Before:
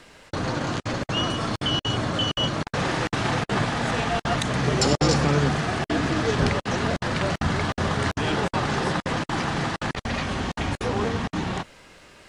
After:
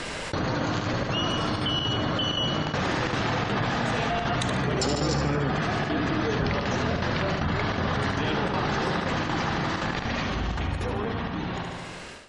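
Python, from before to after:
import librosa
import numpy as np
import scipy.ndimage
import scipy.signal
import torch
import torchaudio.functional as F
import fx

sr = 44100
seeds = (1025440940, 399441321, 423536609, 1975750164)

p1 = fx.fade_out_tail(x, sr, length_s=3.3)
p2 = fx.spec_gate(p1, sr, threshold_db=-30, keep='strong')
p3 = fx.peak_eq(p2, sr, hz=60.0, db=10.5, octaves=0.91, at=(10.35, 10.87))
p4 = p3 + fx.echo_feedback(p3, sr, ms=73, feedback_pct=51, wet_db=-9, dry=0)
p5 = fx.env_flatten(p4, sr, amount_pct=70)
y = p5 * librosa.db_to_amplitude(-7.0)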